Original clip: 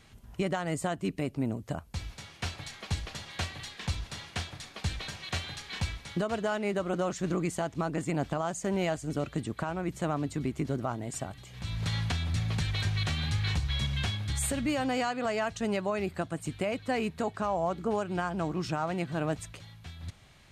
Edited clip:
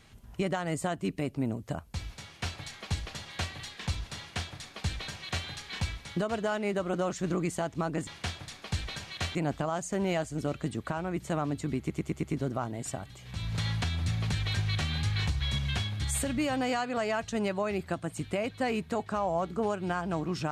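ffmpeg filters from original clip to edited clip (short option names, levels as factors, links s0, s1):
-filter_complex "[0:a]asplit=7[s0][s1][s2][s3][s4][s5][s6];[s0]atrim=end=8.072[s7];[s1]atrim=start=4.188:end=5.472[s8];[s2]atrim=start=8.068:end=10.622[s9];[s3]atrim=start=10.508:end=10.622[s10];[s4]atrim=start=10.508:end=10.622[s11];[s5]atrim=start=10.508:end=10.622[s12];[s6]atrim=start=10.508[s13];[s7][s8]acrossfade=d=0.004:c1=hsin:c2=hsin[s14];[s14][s9]acrossfade=d=0.004:c1=hsin:c2=hsin[s15];[s15][s10]acrossfade=d=0.004:c1=hsin:c2=hsin[s16];[s16][s11]acrossfade=d=0.004:c1=hsin:c2=hsin[s17];[s17][s12]acrossfade=d=0.004:c1=hsin:c2=hsin[s18];[s18][s13]acrossfade=d=0.004:c1=hsin:c2=hsin"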